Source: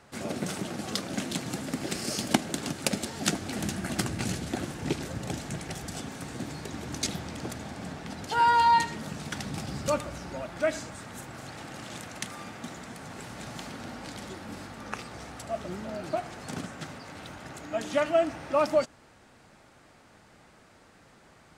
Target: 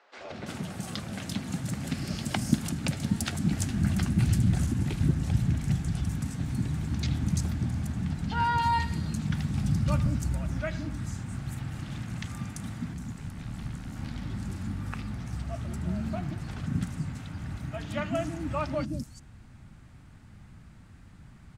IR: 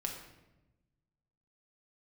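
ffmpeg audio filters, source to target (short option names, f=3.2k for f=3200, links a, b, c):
-filter_complex "[0:a]asplit=3[a][b][c];[a]afade=t=out:st=12.93:d=0.02[d];[b]tremolo=f=75:d=0.71,afade=t=in:st=12.93:d=0.02,afade=t=out:st=13.95:d=0.02[e];[c]afade=t=in:st=13.95:d=0.02[f];[d][e][f]amix=inputs=3:normalize=0,acrossover=split=390|5200[g][h][i];[g]adelay=180[j];[i]adelay=340[k];[j][h][k]amix=inputs=3:normalize=0,asubboost=boost=10.5:cutoff=160,volume=-3dB"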